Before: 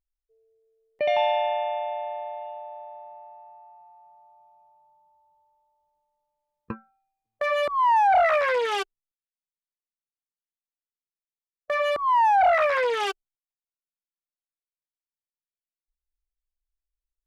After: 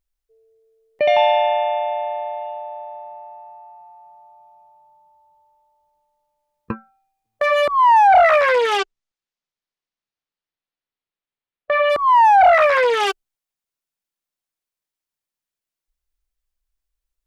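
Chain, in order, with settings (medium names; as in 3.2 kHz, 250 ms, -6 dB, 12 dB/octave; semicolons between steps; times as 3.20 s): 8.77–11.89 s: low-pass 7.4 kHz -> 3.4 kHz 24 dB/octave; trim +7.5 dB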